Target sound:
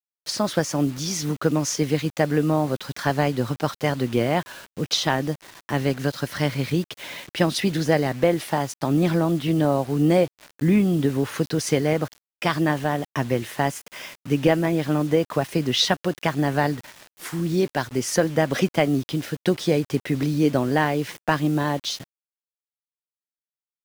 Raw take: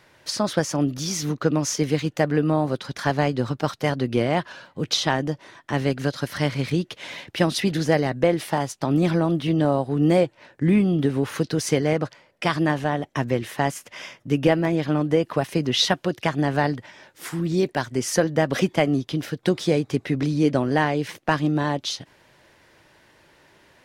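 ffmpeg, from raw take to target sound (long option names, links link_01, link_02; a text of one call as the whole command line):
ffmpeg -i in.wav -af "acrusher=bits=6:mix=0:aa=0.000001" out.wav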